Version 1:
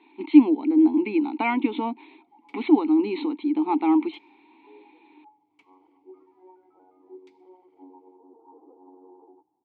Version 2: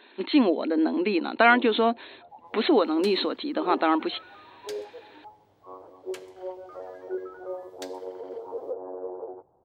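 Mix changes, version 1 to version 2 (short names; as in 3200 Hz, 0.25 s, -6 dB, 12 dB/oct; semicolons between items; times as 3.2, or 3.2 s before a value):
speech -9.5 dB; second sound: entry +0.55 s; master: remove vowel filter u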